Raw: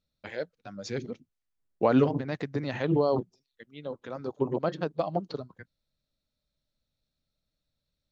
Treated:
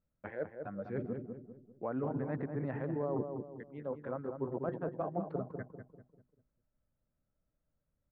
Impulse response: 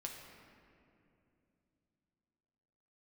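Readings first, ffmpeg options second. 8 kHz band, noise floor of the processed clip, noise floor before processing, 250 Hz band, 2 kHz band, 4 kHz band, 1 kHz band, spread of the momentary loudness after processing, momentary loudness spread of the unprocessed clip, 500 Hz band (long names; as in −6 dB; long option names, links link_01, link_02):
can't be measured, −84 dBFS, −85 dBFS, −8.5 dB, −9.5 dB, below −30 dB, −9.0 dB, 11 LU, 18 LU, −8.5 dB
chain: -filter_complex "[0:a]lowpass=frequency=1700:width=0.5412,lowpass=frequency=1700:width=1.3066,areverse,acompressor=threshold=-33dB:ratio=10,areverse,asplit=2[link_01][link_02];[link_02]adelay=197,lowpass=frequency=1000:poles=1,volume=-5dB,asplit=2[link_03][link_04];[link_04]adelay=197,lowpass=frequency=1000:poles=1,volume=0.44,asplit=2[link_05][link_06];[link_06]adelay=197,lowpass=frequency=1000:poles=1,volume=0.44,asplit=2[link_07][link_08];[link_08]adelay=197,lowpass=frequency=1000:poles=1,volume=0.44,asplit=2[link_09][link_10];[link_10]adelay=197,lowpass=frequency=1000:poles=1,volume=0.44[link_11];[link_01][link_03][link_05][link_07][link_09][link_11]amix=inputs=6:normalize=0"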